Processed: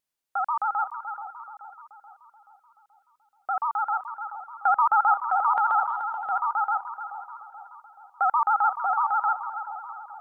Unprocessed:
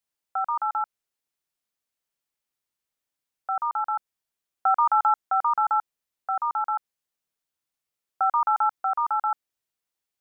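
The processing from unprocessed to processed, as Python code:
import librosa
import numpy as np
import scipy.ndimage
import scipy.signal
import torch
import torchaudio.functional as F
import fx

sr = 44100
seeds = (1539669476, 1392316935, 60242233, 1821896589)

y = fx.echo_split(x, sr, split_hz=1300.0, low_ms=430, high_ms=325, feedback_pct=52, wet_db=-9.5)
y = fx.vibrato(y, sr, rate_hz=14.0, depth_cents=91.0)
y = fx.transient(y, sr, attack_db=-2, sustain_db=6, at=(5.54, 6.3), fade=0.02)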